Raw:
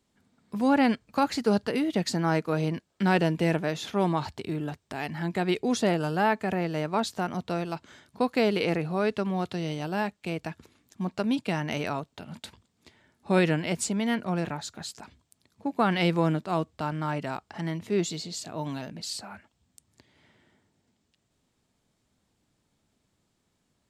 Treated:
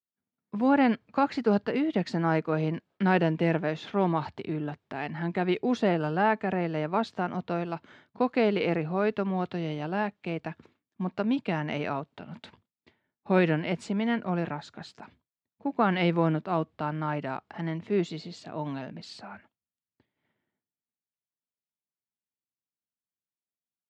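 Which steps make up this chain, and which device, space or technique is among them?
hearing-loss simulation (low-pass 2.8 kHz 12 dB/octave; expander -52 dBFS); high-pass 110 Hz

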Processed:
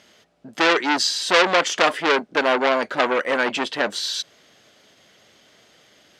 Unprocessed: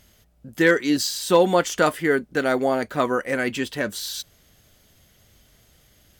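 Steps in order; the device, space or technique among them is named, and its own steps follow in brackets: public-address speaker with an overloaded transformer (transformer saturation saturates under 3.5 kHz; band-pass 300–5100 Hz); trim +8 dB

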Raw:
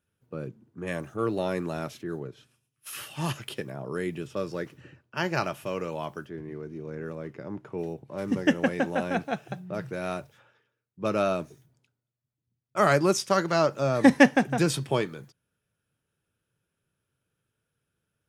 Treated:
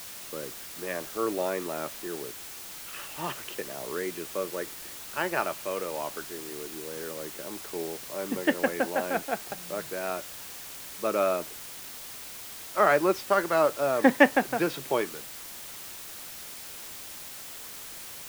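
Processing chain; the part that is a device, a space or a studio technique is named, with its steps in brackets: wax cylinder (band-pass 340–2600 Hz; wow and flutter; white noise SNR 11 dB); trim +1 dB

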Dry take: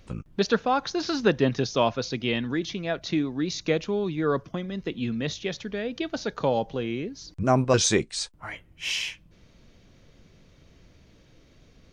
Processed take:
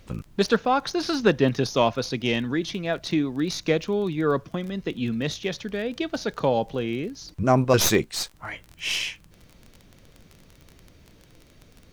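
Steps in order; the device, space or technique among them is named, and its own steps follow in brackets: record under a worn stylus (tracing distortion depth 0.064 ms; crackle 22 per s -35 dBFS; pink noise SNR 40 dB); trim +2 dB

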